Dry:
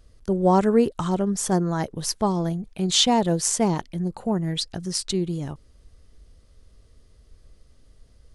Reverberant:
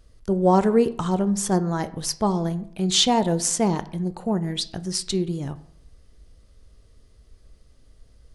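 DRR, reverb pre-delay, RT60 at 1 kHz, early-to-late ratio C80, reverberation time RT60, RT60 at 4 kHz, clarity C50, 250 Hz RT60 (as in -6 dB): 12.0 dB, 10 ms, 0.65 s, 19.5 dB, 0.65 s, 0.40 s, 17.0 dB, 0.80 s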